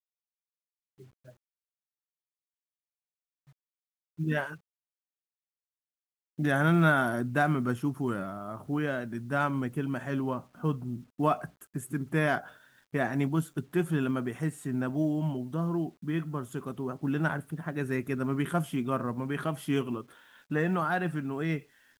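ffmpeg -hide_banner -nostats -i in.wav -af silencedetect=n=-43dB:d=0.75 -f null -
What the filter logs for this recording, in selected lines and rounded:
silence_start: 0.00
silence_end: 1.00 | silence_duration: 1.00
silence_start: 1.30
silence_end: 4.19 | silence_duration: 2.89
silence_start: 4.56
silence_end: 6.39 | silence_duration: 1.83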